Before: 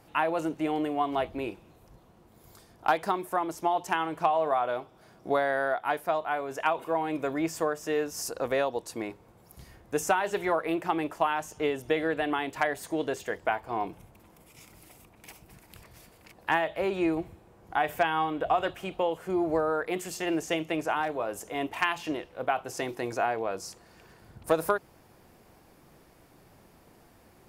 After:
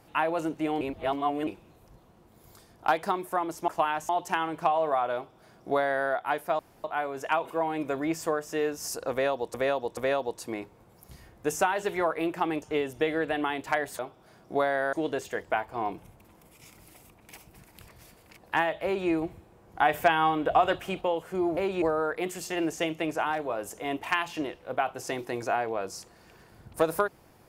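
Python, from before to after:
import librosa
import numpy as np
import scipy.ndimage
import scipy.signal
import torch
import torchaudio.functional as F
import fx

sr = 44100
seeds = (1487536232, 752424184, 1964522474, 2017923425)

y = fx.edit(x, sr, fx.reverse_span(start_s=0.81, length_s=0.66),
    fx.duplicate(start_s=4.74, length_s=0.94, to_s=12.88),
    fx.insert_room_tone(at_s=6.18, length_s=0.25),
    fx.repeat(start_s=8.45, length_s=0.43, count=3),
    fx.move(start_s=11.1, length_s=0.41, to_s=3.68),
    fx.duplicate(start_s=16.79, length_s=0.25, to_s=19.52),
    fx.clip_gain(start_s=17.74, length_s=1.22, db=3.5), tone=tone)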